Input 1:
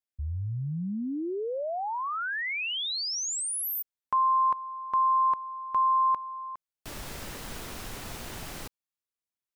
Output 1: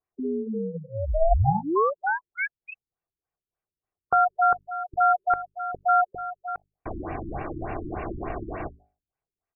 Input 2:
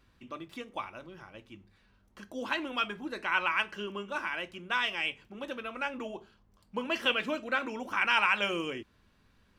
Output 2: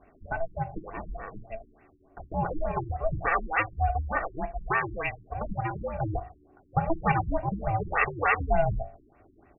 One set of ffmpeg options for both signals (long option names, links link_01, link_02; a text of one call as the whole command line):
ffmpeg -i in.wav -filter_complex "[0:a]equalizer=frequency=410:width_type=o:width=2.7:gain=13,bandreject=frequency=50:width_type=h:width=6,bandreject=frequency=100:width_type=h:width=6,bandreject=frequency=150:width_type=h:width=6,bandreject=frequency=200:width_type=h:width=6,bandreject=frequency=250:width_type=h:width=6,bandreject=frequency=300:width_type=h:width=6,bandreject=frequency=350:width_type=h:width=6,bandreject=frequency=400:width_type=h:width=6,bandreject=frequency=450:width_type=h:width=6,bandreject=frequency=500:width_type=h:width=6,aecho=1:1:2.6:1,asplit=2[link_01][link_02];[link_02]acompressor=threshold=-29dB:ratio=6:attack=9.9:release=449:knee=1:detection=peak,volume=-2.5dB[link_03];[link_01][link_03]amix=inputs=2:normalize=0,aeval=exprs='val(0)*sin(2*PI*330*n/s)':channel_layout=same,afftfilt=real='re*lt(b*sr/1024,350*pow(2900/350,0.5+0.5*sin(2*PI*3.4*pts/sr)))':imag='im*lt(b*sr/1024,350*pow(2900/350,0.5+0.5*sin(2*PI*3.4*pts/sr)))':win_size=1024:overlap=0.75,volume=-1.5dB" out.wav